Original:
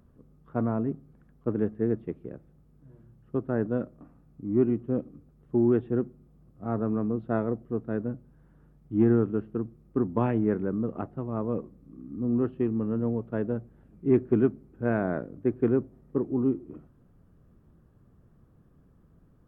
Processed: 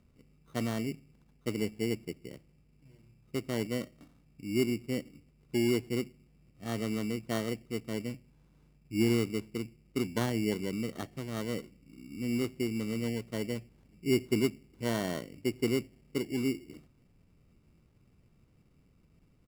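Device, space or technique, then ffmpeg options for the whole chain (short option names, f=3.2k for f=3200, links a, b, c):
crushed at another speed: -af "asetrate=35280,aresample=44100,acrusher=samples=22:mix=1:aa=0.000001,asetrate=55125,aresample=44100,volume=-5.5dB"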